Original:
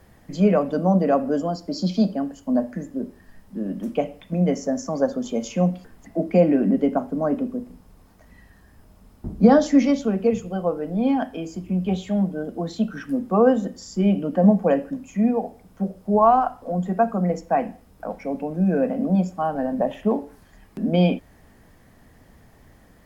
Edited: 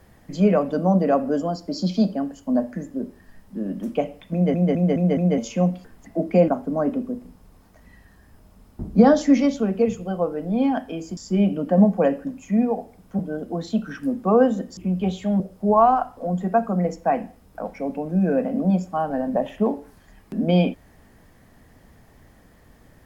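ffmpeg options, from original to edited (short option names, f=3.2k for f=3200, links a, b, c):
-filter_complex "[0:a]asplit=11[a][b][c][d][e][f][g][h][i][j][k];[a]atrim=end=4.542[l];[b]atrim=start=4.328:end=4.542[m];[c]atrim=start=4.328:end=4.542[n];[d]atrim=start=4.328:end=4.542[o];[e]atrim=start=4.328:end=4.542[p];[f]atrim=start=5.378:end=6.482[q];[g]atrim=start=6.928:end=11.622[r];[h]atrim=start=13.828:end=15.852[s];[i]atrim=start=12.248:end=13.832[t];[j]atrim=start=11.618:end=12.252[u];[k]atrim=start=15.848[v];[l][m]acrossfade=d=0.004:c1=hsin:c2=hsin[w];[w][n]acrossfade=d=0.004:c1=hsin:c2=hsin[x];[x][o]acrossfade=d=0.004:c1=hsin:c2=hsin[y];[y][p]acrossfade=d=0.004:c1=hsin:c2=hsin[z];[z][q]acrossfade=d=0.004:c1=hsin:c2=hsin[aa];[aa][r]acrossfade=d=0.004:c1=hsin:c2=hsin[ab];[ab][s]acrossfade=d=0.004:c1=hsin:c2=hsin[ac];[ac][t]acrossfade=d=0.004:c1=hsin:c2=hsin[ad];[ad][u]acrossfade=d=0.004:c1=hsin:c2=hsin[ae];[ae][v]acrossfade=d=0.004:c1=hsin:c2=hsin"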